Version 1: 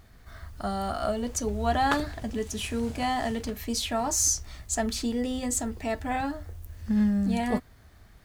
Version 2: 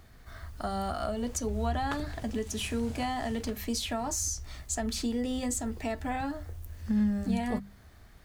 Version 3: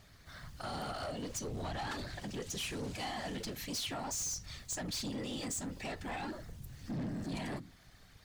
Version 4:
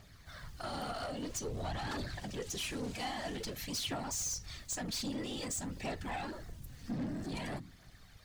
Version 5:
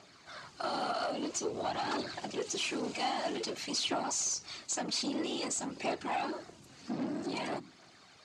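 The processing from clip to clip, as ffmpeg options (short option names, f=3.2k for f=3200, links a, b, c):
-filter_complex "[0:a]bandreject=f=50:t=h:w=6,bandreject=f=100:t=h:w=6,bandreject=f=150:t=h:w=6,bandreject=f=200:t=h:w=6,acrossover=split=190[a][b];[b]acompressor=threshold=-30dB:ratio=6[c];[a][c]amix=inputs=2:normalize=0"
-af "equalizer=f=4.4k:w=0.48:g=9,afftfilt=real='hypot(re,im)*cos(2*PI*random(0))':imag='hypot(re,im)*sin(2*PI*random(1))':win_size=512:overlap=0.75,asoftclip=type=tanh:threshold=-34.5dB"
-af "aphaser=in_gain=1:out_gain=1:delay=4.5:decay=0.33:speed=0.51:type=triangular"
-af "highpass=330,equalizer=f=350:t=q:w=4:g=4,equalizer=f=500:t=q:w=4:g=-4,equalizer=f=1.8k:t=q:w=4:g=-8,equalizer=f=3.4k:t=q:w=4:g=-5,equalizer=f=5.7k:t=q:w=4:g=-4,lowpass=f=7.4k:w=0.5412,lowpass=f=7.4k:w=1.3066,volume=7.5dB"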